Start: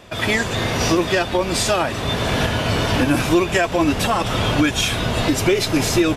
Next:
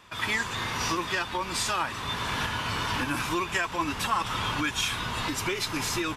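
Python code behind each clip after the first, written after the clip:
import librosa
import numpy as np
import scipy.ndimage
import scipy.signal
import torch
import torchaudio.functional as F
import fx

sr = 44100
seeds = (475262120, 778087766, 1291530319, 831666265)

y = fx.low_shelf_res(x, sr, hz=800.0, db=-6.0, q=3.0)
y = F.gain(torch.from_numpy(y), -8.0).numpy()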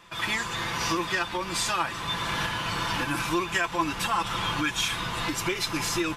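y = x + 0.5 * np.pad(x, (int(5.9 * sr / 1000.0), 0))[:len(x)]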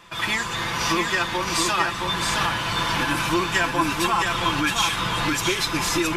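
y = x + 10.0 ** (-4.0 / 20.0) * np.pad(x, (int(668 * sr / 1000.0), 0))[:len(x)]
y = F.gain(torch.from_numpy(y), 4.0).numpy()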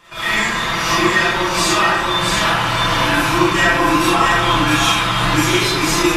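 y = fx.rev_freeverb(x, sr, rt60_s=1.1, hf_ratio=0.5, predelay_ms=5, drr_db=-9.5)
y = F.gain(torch.from_numpy(y), -2.0).numpy()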